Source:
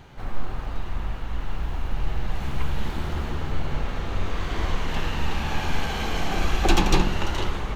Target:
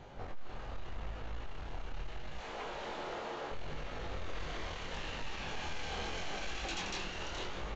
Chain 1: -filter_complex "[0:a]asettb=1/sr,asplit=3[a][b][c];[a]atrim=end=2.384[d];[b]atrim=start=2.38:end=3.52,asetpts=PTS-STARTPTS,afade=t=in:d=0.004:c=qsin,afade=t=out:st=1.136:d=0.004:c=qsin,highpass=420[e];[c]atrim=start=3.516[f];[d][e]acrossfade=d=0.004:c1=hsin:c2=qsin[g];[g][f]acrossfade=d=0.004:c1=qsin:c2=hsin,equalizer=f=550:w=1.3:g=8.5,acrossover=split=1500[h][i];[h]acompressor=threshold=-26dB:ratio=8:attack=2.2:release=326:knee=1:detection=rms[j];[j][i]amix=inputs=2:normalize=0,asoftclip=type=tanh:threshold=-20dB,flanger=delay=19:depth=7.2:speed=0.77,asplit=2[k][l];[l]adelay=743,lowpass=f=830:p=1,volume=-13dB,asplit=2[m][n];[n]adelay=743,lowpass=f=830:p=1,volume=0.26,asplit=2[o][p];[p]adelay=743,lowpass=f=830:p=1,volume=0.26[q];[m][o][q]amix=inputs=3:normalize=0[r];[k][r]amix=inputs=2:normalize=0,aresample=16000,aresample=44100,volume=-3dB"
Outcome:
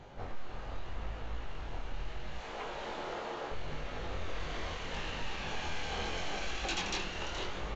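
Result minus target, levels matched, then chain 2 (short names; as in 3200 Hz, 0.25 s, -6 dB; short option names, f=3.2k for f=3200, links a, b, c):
soft clip: distortion -10 dB
-filter_complex "[0:a]asettb=1/sr,asplit=3[a][b][c];[a]atrim=end=2.384[d];[b]atrim=start=2.38:end=3.52,asetpts=PTS-STARTPTS,afade=t=in:d=0.004:c=qsin,afade=t=out:st=1.136:d=0.004:c=qsin,highpass=420[e];[c]atrim=start=3.516[f];[d][e]acrossfade=d=0.004:c1=hsin:c2=qsin[g];[g][f]acrossfade=d=0.004:c1=qsin:c2=hsin,equalizer=f=550:w=1.3:g=8.5,acrossover=split=1500[h][i];[h]acompressor=threshold=-26dB:ratio=8:attack=2.2:release=326:knee=1:detection=rms[j];[j][i]amix=inputs=2:normalize=0,asoftclip=type=tanh:threshold=-28.5dB,flanger=delay=19:depth=7.2:speed=0.77,asplit=2[k][l];[l]adelay=743,lowpass=f=830:p=1,volume=-13dB,asplit=2[m][n];[n]adelay=743,lowpass=f=830:p=1,volume=0.26,asplit=2[o][p];[p]adelay=743,lowpass=f=830:p=1,volume=0.26[q];[m][o][q]amix=inputs=3:normalize=0[r];[k][r]amix=inputs=2:normalize=0,aresample=16000,aresample=44100,volume=-3dB"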